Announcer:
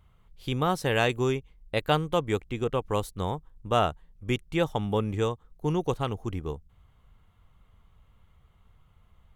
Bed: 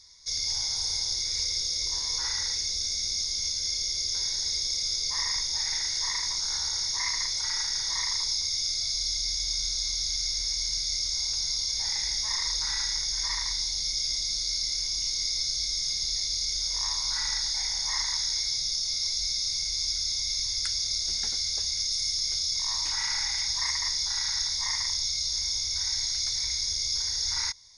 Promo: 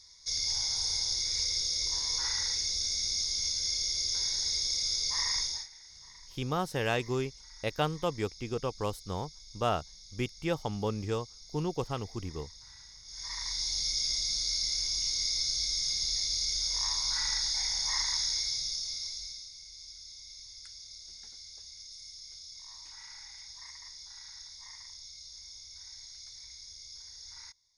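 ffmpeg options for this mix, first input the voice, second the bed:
-filter_complex "[0:a]adelay=5900,volume=0.531[s0];[1:a]volume=8.91,afade=t=out:st=5.43:d=0.25:silence=0.0891251,afade=t=in:st=13.04:d=0.71:silence=0.0891251,afade=t=out:st=18.22:d=1.28:silence=0.141254[s1];[s0][s1]amix=inputs=2:normalize=0"

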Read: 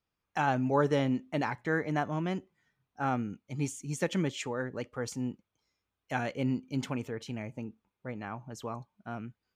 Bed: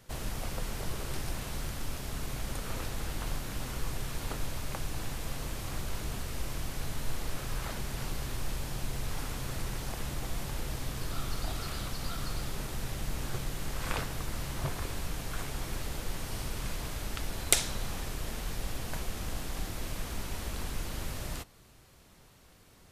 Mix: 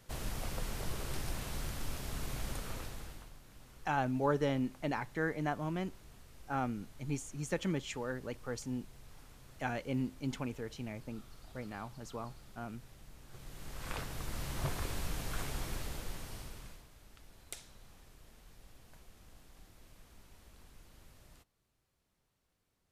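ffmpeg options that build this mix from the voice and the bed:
-filter_complex "[0:a]adelay=3500,volume=0.596[s0];[1:a]volume=5.62,afade=t=out:st=2.47:d=0.83:silence=0.141254,afade=t=in:st=13.27:d=1.41:silence=0.125893,afade=t=out:st=15.51:d=1.35:silence=0.1[s1];[s0][s1]amix=inputs=2:normalize=0"

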